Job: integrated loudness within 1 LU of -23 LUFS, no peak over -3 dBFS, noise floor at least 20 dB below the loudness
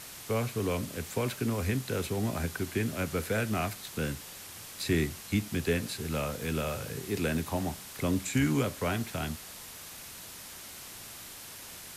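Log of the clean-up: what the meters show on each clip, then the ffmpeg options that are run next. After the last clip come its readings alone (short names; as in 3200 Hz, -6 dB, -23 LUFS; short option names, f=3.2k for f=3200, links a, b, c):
noise floor -46 dBFS; noise floor target -53 dBFS; loudness -33.0 LUFS; peak -14.5 dBFS; loudness target -23.0 LUFS
-> -af "afftdn=nr=7:nf=-46"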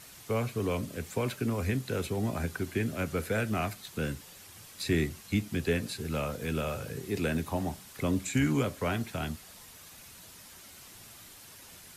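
noise floor -51 dBFS; noise floor target -53 dBFS
-> -af "afftdn=nr=6:nf=-51"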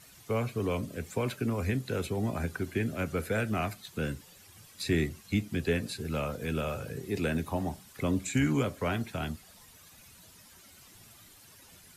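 noise floor -56 dBFS; loudness -32.5 LUFS; peak -15.0 dBFS; loudness target -23.0 LUFS
-> -af "volume=9.5dB"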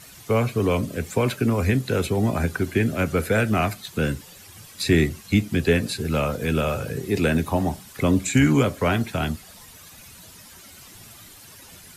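loudness -23.0 LUFS; peak -5.5 dBFS; noise floor -46 dBFS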